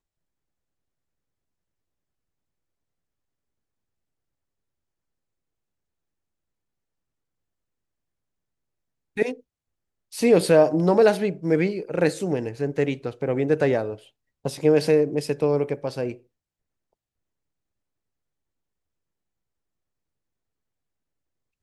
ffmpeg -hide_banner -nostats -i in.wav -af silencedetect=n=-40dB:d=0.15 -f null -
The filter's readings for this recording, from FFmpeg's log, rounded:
silence_start: 0.00
silence_end: 9.17 | silence_duration: 9.17
silence_start: 9.40
silence_end: 10.12 | silence_duration: 0.73
silence_start: 13.96
silence_end: 14.45 | silence_duration: 0.49
silence_start: 16.16
silence_end: 21.62 | silence_duration: 5.46